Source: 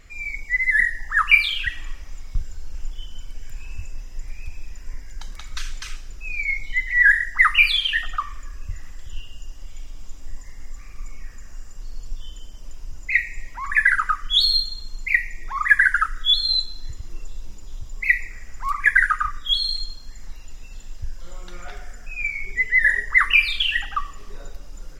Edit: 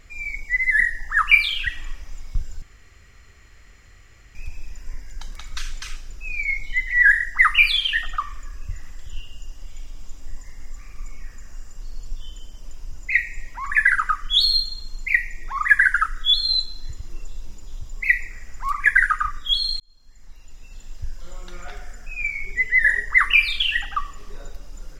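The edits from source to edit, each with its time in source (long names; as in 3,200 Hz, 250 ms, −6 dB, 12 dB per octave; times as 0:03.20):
0:02.62–0:04.35: fill with room tone
0:19.80–0:21.05: fade in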